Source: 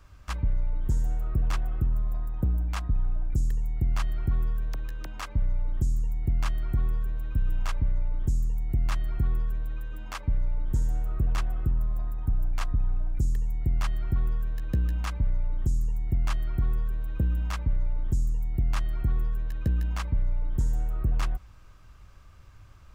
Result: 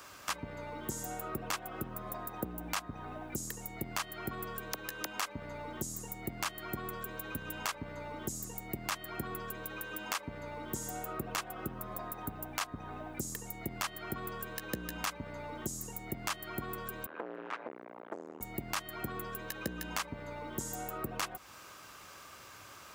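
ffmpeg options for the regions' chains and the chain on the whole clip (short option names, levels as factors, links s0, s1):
-filter_complex "[0:a]asettb=1/sr,asplit=3[s0][s1][s2];[s0]atrim=end=17.064[s3];[s1]atrim=start=17.06:end=18.41,asetpts=PTS-STARTPTS,afade=t=in:d=0.004:c=qsin,afade=t=out:st=1.346:d=0.004:c=qsin,aeval=exprs='val(0)+0.00562*(sin(2*PI*50*n/s)+sin(2*PI*2*50*n/s)/2+sin(2*PI*3*50*n/s)/3+sin(2*PI*4*50*n/s)/4+sin(2*PI*5*50*n/s)/5)':c=same,volume=44.7,asoftclip=hard,volume=0.0224,asuperpass=centerf=830:order=4:qfactor=0.51[s4];[s2]atrim=start=18.406[s5];[s3][s4]acrossfade=d=0.004:c1=hsin:c2=qsin[s6];[s6][s5]acrossfade=d=0.004:c1=qsin:c2=hsin,highpass=330,highshelf=f=5800:g=9,acompressor=threshold=0.00447:ratio=2.5,volume=3.16"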